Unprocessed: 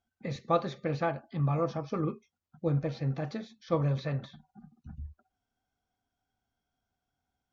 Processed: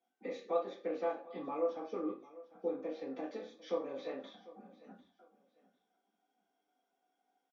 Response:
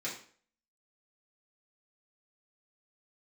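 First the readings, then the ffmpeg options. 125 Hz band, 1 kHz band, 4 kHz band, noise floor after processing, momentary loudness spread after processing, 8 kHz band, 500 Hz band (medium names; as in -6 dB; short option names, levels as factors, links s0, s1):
under -30 dB, -8.0 dB, -8.0 dB, -84 dBFS, 19 LU, no reading, -3.0 dB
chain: -filter_complex "[0:a]highpass=f=280:w=0.5412,highpass=f=280:w=1.3066,highshelf=f=2300:g=-9.5,acompressor=threshold=0.00282:ratio=2,aecho=1:1:748|1496:0.112|0.0269[s0];[1:a]atrim=start_sample=2205,asetrate=66150,aresample=44100[s1];[s0][s1]afir=irnorm=-1:irlink=0,volume=2.11"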